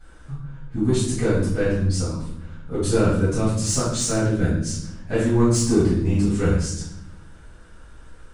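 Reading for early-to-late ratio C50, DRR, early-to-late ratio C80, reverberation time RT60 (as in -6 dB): 1.5 dB, -13.0 dB, 6.0 dB, 0.85 s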